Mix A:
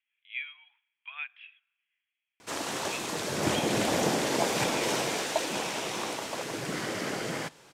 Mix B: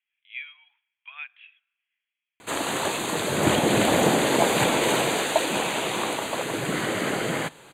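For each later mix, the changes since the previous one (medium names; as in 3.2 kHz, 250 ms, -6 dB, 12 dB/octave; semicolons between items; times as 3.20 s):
background +7.0 dB; master: add Butterworth band-stop 5.4 kHz, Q 2.5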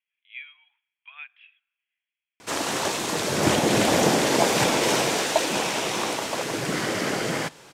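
speech -3.0 dB; master: remove Butterworth band-stop 5.4 kHz, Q 2.5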